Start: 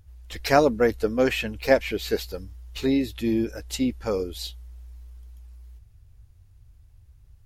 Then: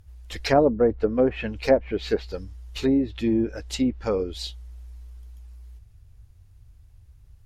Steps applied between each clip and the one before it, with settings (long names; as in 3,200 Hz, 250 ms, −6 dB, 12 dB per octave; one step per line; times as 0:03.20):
treble cut that deepens with the level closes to 740 Hz, closed at −17.5 dBFS
level +1.5 dB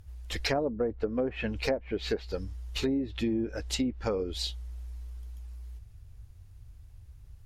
downward compressor 5 to 1, threshold −28 dBFS, peak gain reduction 14 dB
level +1 dB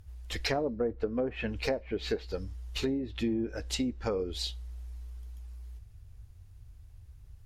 convolution reverb, pre-delay 3 ms, DRR 16.5 dB
level −1.5 dB